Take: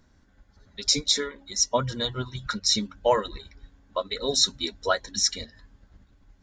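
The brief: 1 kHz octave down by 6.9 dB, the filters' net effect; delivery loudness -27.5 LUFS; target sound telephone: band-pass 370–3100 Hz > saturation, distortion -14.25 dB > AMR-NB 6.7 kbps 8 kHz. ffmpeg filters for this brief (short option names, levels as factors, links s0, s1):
-af "highpass=370,lowpass=3100,equalizer=f=1000:t=o:g=-8.5,asoftclip=threshold=0.0841,volume=3.35" -ar 8000 -c:a libopencore_amrnb -b:a 6700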